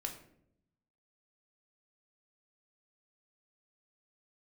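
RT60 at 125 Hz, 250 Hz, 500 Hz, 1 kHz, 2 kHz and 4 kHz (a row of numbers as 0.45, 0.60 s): 1.2, 1.1, 0.85, 0.55, 0.55, 0.40 s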